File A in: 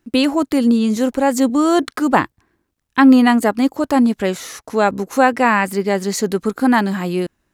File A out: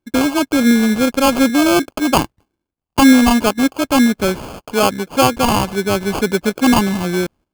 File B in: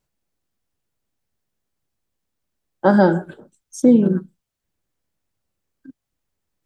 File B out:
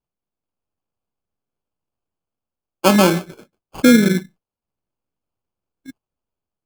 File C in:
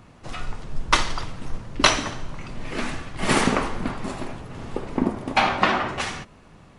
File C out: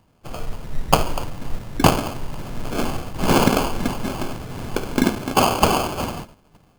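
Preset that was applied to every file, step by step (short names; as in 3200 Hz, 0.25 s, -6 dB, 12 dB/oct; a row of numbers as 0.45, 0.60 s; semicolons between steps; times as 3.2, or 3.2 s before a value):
sample-rate reducer 1900 Hz, jitter 0%; AGC gain up to 4 dB; gate -42 dBFS, range -11 dB; normalise peaks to -1.5 dBFS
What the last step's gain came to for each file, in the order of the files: 0.0, 0.0, +1.0 dB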